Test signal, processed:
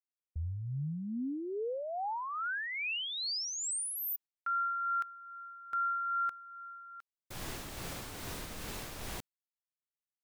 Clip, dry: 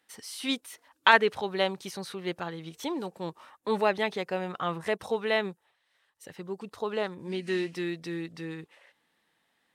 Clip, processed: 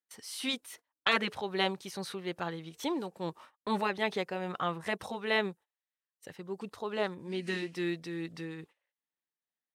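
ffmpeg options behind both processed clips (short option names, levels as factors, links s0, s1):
-af "agate=range=0.0501:threshold=0.00316:ratio=16:detection=peak,afftfilt=real='re*lt(hypot(re,im),0.447)':imag='im*lt(hypot(re,im),0.447)':win_size=1024:overlap=0.75,tremolo=f=2.4:d=0.38"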